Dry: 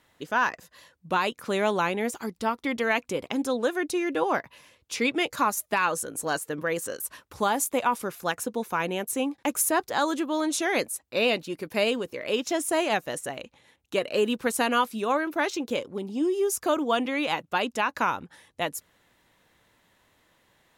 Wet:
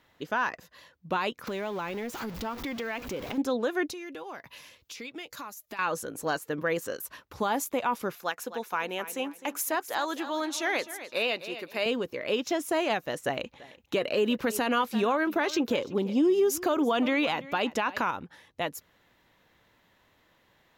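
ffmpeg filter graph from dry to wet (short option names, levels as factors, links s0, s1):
-filter_complex "[0:a]asettb=1/sr,asplit=3[s0][s1][s2];[s0]atrim=end=1.474[s3];[s1]atrim=start=1.47:end=3.38,asetpts=PTS-STARTPTS,afade=t=in:d=0.004:c=qsin,afade=t=out:st=1.906:d=0.004:c=qsin,aeval=exprs='val(0)+0.5*0.0251*sgn(val(0))':c=same,acompressor=threshold=0.0224:ratio=3:attack=3.2:release=140:knee=1:detection=peak[s4];[s2]atrim=start=3.376[s5];[s3][s4]acrossfade=d=0.004:c1=hsin:c2=qsin[s6];[s6][s5]acrossfade=d=0.004:c1=qsin:c2=hsin,asettb=1/sr,asplit=3[s7][s8][s9];[s7]atrim=end=3.924[s10];[s8]atrim=start=3.92:end=5.79,asetpts=PTS-STARTPTS,afade=t=in:d=0.004:c=qsin,afade=t=out:st=1.866:d=0.004:c=qsin,highshelf=f=3100:g=11.5,acompressor=threshold=0.0126:ratio=6:attack=3.2:release=140:knee=1:detection=peak[s11];[s9]atrim=start=5.786[s12];[s10][s11]acrossfade=d=0.004:c1=hsin:c2=qsin[s13];[s13][s12]acrossfade=d=0.004:c1=qsin:c2=hsin,asettb=1/sr,asplit=3[s14][s15][s16];[s14]atrim=end=8.164[s17];[s15]atrim=start=8.16:end=11.86,asetpts=PTS-STARTPTS,afade=t=in:d=0.004:c=qsin,afade=t=out:st=3.696:d=0.004:c=qsin,highpass=f=640:p=1,aecho=1:1:257|514|771:0.2|0.0559|0.0156,atrim=end_sample=163170[s18];[s16]atrim=start=11.856[s19];[s17][s18]acrossfade=d=0.004:c1=hsin:c2=qsin[s20];[s20][s19]acrossfade=d=0.004:c1=qsin:c2=hsin,asettb=1/sr,asplit=3[s21][s22][s23];[s21]atrim=end=13.264[s24];[s22]atrim=start=13.26:end=18.11,asetpts=PTS-STARTPTS,afade=t=in:d=0.004:c=qsin,afade=t=out:st=4.846:d=0.004:c=qsin,acontrast=31,aecho=1:1:337:0.0891,atrim=end_sample=213885[s25];[s23]atrim=start=18.106[s26];[s24][s25]acrossfade=d=0.004:c1=hsin:c2=qsin[s27];[s27][s26]acrossfade=d=0.004:c1=qsin:c2=hsin,equalizer=f=9100:t=o:w=0.67:g=-12,alimiter=limit=0.133:level=0:latency=1:release=101"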